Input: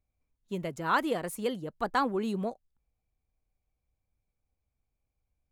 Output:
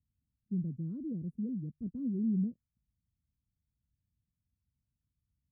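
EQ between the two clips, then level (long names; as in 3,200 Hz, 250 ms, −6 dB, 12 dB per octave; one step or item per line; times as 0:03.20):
high-pass filter 85 Hz 12 dB per octave
inverse Chebyshev low-pass filter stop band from 780 Hz, stop band 60 dB
+5.0 dB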